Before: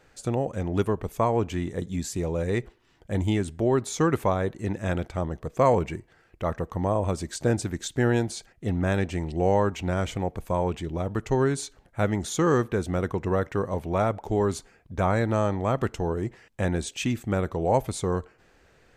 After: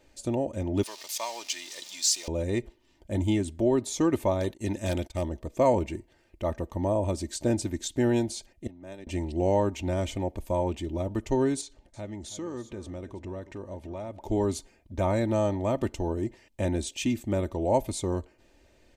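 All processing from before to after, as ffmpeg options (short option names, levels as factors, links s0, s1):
-filter_complex "[0:a]asettb=1/sr,asplit=3[s0][s1][s2];[s0]atrim=end=0.834[s3];[s1]atrim=start=0.83:end=2.28,asetpts=PTS-STARTPTS,afade=t=in:d=0.004:c=qsin,afade=t=out:st=1.446:d=0.004:c=qsin,aeval=exprs='val(0)+0.5*0.0133*sgn(val(0))':c=same,highpass=1200,equalizer=f=5000:w=0.87:g=14.5[s4];[s2]atrim=start=2.276[s5];[s3][s4]acrossfade=d=0.004:c1=hsin:c2=qsin[s6];[s6][s5]acrossfade=d=0.004:c1=qsin:c2=hsin,asettb=1/sr,asplit=3[s7][s8][s9];[s7]atrim=end=4.404[s10];[s8]atrim=start=4.4:end=5.29,asetpts=PTS-STARTPTS,afade=t=in:d=0.004:c=qsin,afade=t=out:st=0.886:d=0.004:c=qsin,agate=range=0.126:threshold=0.00891:ratio=16:release=100:detection=peak,highshelf=f=2500:g=8.5,aeval=exprs='0.126*(abs(mod(val(0)/0.126+3,4)-2)-1)':c=same[s11];[s9]atrim=start=5.286[s12];[s10][s11]acrossfade=d=0.004:c1=hsin:c2=qsin[s13];[s13][s12]acrossfade=d=0.004:c1=qsin:c2=hsin,asettb=1/sr,asplit=3[s14][s15][s16];[s14]atrim=end=8.674[s17];[s15]atrim=start=8.67:end=9.07,asetpts=PTS-STARTPTS,afade=t=in:d=0.004:c=qsin,afade=t=out:st=0.396:d=0.004:c=qsin,agate=range=0.0224:threshold=0.2:ratio=3:release=100:detection=peak,equalizer=f=110:w=1.5:g=-9.5[s18];[s16]atrim=start=9.066[s19];[s17][s18]acrossfade=d=0.004:c1=hsin:c2=qsin[s20];[s20][s19]acrossfade=d=0.004:c1=qsin:c2=hsin,asettb=1/sr,asplit=3[s21][s22][s23];[s21]atrim=end=11.614[s24];[s22]atrim=start=11.61:end=14.2,asetpts=PTS-STARTPTS,afade=t=in:d=0.004:c=qsin,afade=t=out:st=2.586:d=0.004:c=qsin,lowpass=8700,acompressor=threshold=0.00891:ratio=2:attack=3.2:release=140:knee=1:detection=peak,aecho=1:1:326:0.178,atrim=end_sample=114219[s25];[s23]atrim=start=14.196[s26];[s24][s25]acrossfade=d=0.004:c1=hsin:c2=qsin[s27];[s27][s26]acrossfade=d=0.004:c1=qsin:c2=hsin,equalizer=f=1400:t=o:w=0.74:g=-12,aecho=1:1:3.3:0.57,volume=0.841"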